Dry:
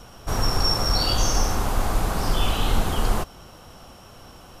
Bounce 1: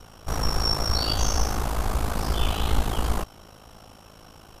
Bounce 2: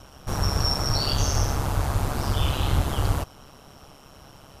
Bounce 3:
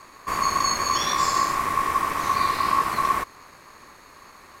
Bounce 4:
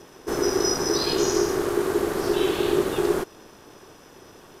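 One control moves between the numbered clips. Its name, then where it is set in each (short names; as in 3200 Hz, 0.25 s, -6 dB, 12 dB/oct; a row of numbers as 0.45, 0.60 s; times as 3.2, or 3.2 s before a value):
ring modulator, frequency: 27, 69, 1100, 380 Hz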